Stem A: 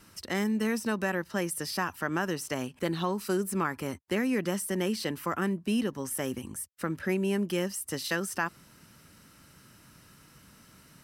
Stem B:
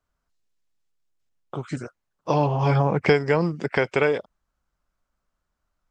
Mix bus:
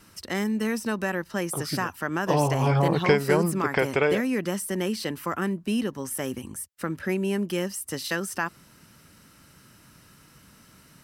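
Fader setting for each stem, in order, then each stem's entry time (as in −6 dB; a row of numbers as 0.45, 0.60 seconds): +2.0, −2.0 decibels; 0.00, 0.00 seconds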